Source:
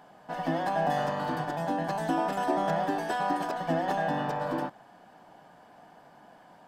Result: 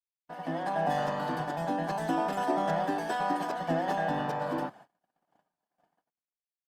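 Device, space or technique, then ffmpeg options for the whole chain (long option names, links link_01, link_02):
video call: -af "highpass=frequency=110:width=0.5412,highpass=frequency=110:width=1.3066,dynaudnorm=framelen=100:gausssize=11:maxgain=6.5dB,agate=range=-46dB:threshold=-43dB:ratio=16:detection=peak,volume=-7.5dB" -ar 48000 -c:a libopus -b:a 32k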